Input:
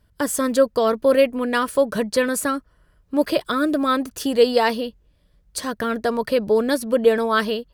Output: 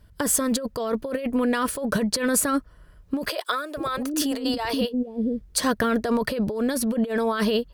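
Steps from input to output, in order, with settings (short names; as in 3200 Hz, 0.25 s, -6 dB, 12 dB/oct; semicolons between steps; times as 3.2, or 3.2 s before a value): low shelf 140 Hz +4 dB; negative-ratio compressor -24 dBFS, ratio -1; 3.29–5.6 bands offset in time highs, lows 0.48 s, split 440 Hz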